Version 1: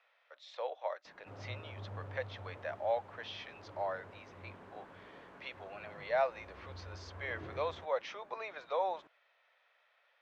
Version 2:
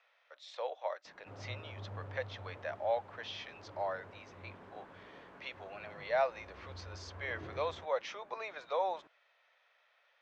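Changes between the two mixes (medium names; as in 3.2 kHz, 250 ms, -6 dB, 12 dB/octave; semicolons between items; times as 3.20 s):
background: add distance through air 100 m; master: remove distance through air 74 m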